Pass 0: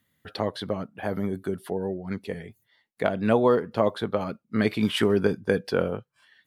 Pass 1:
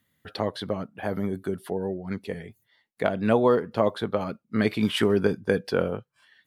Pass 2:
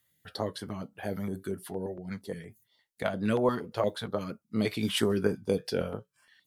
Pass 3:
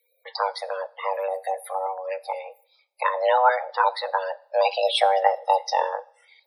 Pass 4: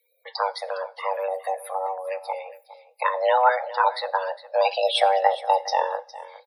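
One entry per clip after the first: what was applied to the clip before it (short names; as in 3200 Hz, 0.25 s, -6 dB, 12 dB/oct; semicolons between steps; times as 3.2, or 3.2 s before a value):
nothing audible
flange 0.45 Hz, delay 5.6 ms, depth 4.6 ms, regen -66%; tone controls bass 0 dB, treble +8 dB; stepped notch 8.6 Hz 230–3700 Hz
loudest bins only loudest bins 64; two-slope reverb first 0.57 s, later 1.9 s, from -27 dB, DRR 17 dB; frequency shift +380 Hz; gain +7.5 dB
echo 0.41 s -16.5 dB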